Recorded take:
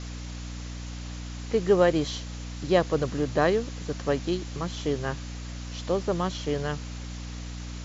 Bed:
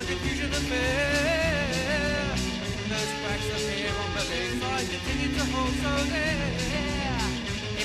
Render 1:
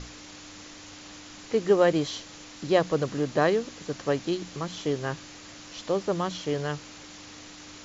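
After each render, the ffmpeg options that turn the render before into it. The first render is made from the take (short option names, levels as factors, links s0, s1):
-af "bandreject=f=60:t=h:w=6,bandreject=f=120:t=h:w=6,bandreject=f=180:t=h:w=6,bandreject=f=240:t=h:w=6"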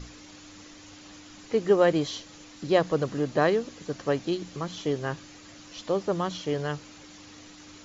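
-af "afftdn=nr=6:nf=-46"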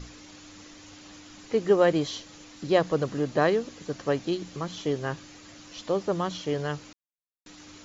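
-filter_complex "[0:a]asplit=3[s0][s1][s2];[s0]atrim=end=6.93,asetpts=PTS-STARTPTS,afade=t=out:st=6.926:d=0.004:c=hsin[s3];[s1]atrim=start=6.93:end=7.46,asetpts=PTS-STARTPTS,volume=0[s4];[s2]atrim=start=7.46,asetpts=PTS-STARTPTS,afade=t=in:d=0.004:c=hsin[s5];[s3][s4][s5]concat=n=3:v=0:a=1"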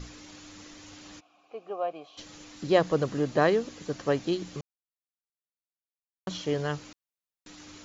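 -filter_complex "[0:a]asplit=3[s0][s1][s2];[s0]afade=t=out:st=1.19:d=0.02[s3];[s1]asplit=3[s4][s5][s6];[s4]bandpass=f=730:t=q:w=8,volume=1[s7];[s5]bandpass=f=1090:t=q:w=8,volume=0.501[s8];[s6]bandpass=f=2440:t=q:w=8,volume=0.355[s9];[s7][s8][s9]amix=inputs=3:normalize=0,afade=t=in:st=1.19:d=0.02,afade=t=out:st=2.17:d=0.02[s10];[s2]afade=t=in:st=2.17:d=0.02[s11];[s3][s10][s11]amix=inputs=3:normalize=0,asplit=3[s12][s13][s14];[s12]atrim=end=4.61,asetpts=PTS-STARTPTS,afade=t=out:st=4.606:d=0.004:c=hsin[s15];[s13]atrim=start=4.61:end=6.27,asetpts=PTS-STARTPTS,volume=0[s16];[s14]atrim=start=6.27,asetpts=PTS-STARTPTS,afade=t=in:d=0.004:c=hsin[s17];[s15][s16][s17]concat=n=3:v=0:a=1"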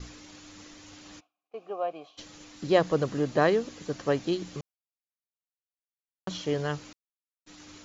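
-af "agate=range=0.0224:threshold=0.00501:ratio=3:detection=peak"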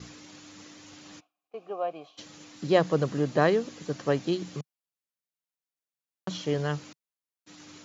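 -af "highpass=110,equalizer=f=150:w=2.1:g=4.5"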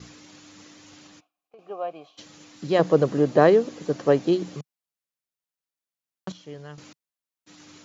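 -filter_complex "[0:a]asettb=1/sr,asplit=3[s0][s1][s2];[s0]atrim=end=1.064[s3];[s1]atrim=start=1.06:end=1.59,asetpts=PTS-STARTPTS,afade=t=in:d=0.004:c=qsin,afade=t=out:st=0.526:d=0.004:c=qsin,acompressor=threshold=0.00501:ratio=6:attack=3.2:release=140:knee=1:detection=peak[s4];[s2]atrim=start=1.586[s5];[s3][s4]acrossfade=d=0.004:c1=hsin:c2=qsin[s6];[s6][s5]acrossfade=d=0.004:c1=qsin:c2=hsin,asettb=1/sr,asplit=3[s7][s8][s9];[s7]atrim=end=2.794[s10];[s8]atrim=start=2.79:end=4.55,asetpts=PTS-STARTPTS,afade=t=in:d=0.004:c=qsin,afade=t=out:st=1.756:d=0.004:c=qsin,equalizer=f=460:w=0.56:g=8[s11];[s9]atrim=start=4.546[s12];[s10][s11]acrossfade=d=0.004:c1=hsin:c2=qsin[s13];[s13][s12]acrossfade=d=0.004:c1=qsin:c2=hsin,asplit=3[s14][s15][s16];[s14]atrim=end=6.322[s17];[s15]atrim=start=6.318:end=6.782,asetpts=PTS-STARTPTS,volume=0.251[s18];[s16]atrim=start=6.778[s19];[s17][s18]acrossfade=d=0.004:c1=hsin:c2=hsin[s20];[s20][s19]acrossfade=d=0.004:c1=hsin:c2=hsin"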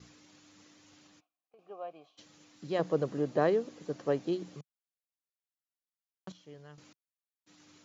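-af "volume=0.282"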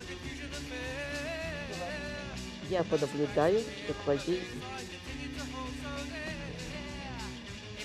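-filter_complex "[1:a]volume=0.237[s0];[0:a][s0]amix=inputs=2:normalize=0"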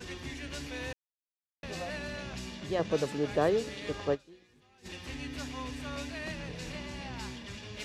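-filter_complex "[0:a]asplit=5[s0][s1][s2][s3][s4];[s0]atrim=end=0.93,asetpts=PTS-STARTPTS,afade=t=out:st=0.926:d=0.004:c=hsin[s5];[s1]atrim=start=0.93:end=1.63,asetpts=PTS-STARTPTS,volume=0[s6];[s2]atrim=start=1.63:end=4.28,asetpts=PTS-STARTPTS,afade=t=in:d=0.004:c=hsin,afade=t=out:st=2.51:d=0.14:c=exp:silence=0.0707946[s7];[s3]atrim=start=4.28:end=4.72,asetpts=PTS-STARTPTS,volume=0.0708[s8];[s4]atrim=start=4.72,asetpts=PTS-STARTPTS,afade=t=in:d=0.14:c=exp:silence=0.0707946[s9];[s5][s6][s7][s8][s9]concat=n=5:v=0:a=1"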